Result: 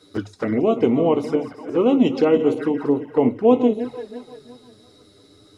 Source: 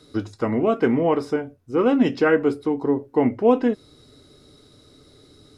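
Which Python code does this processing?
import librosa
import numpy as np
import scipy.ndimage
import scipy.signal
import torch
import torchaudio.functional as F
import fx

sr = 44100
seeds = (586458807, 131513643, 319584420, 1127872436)

y = fx.reverse_delay_fb(x, sr, ms=170, feedback_pct=61, wet_db=-11)
y = fx.low_shelf(y, sr, hz=73.0, db=-11.5)
y = fx.env_flanger(y, sr, rest_ms=11.2, full_db=-18.0)
y = y * 10.0 ** (3.0 / 20.0)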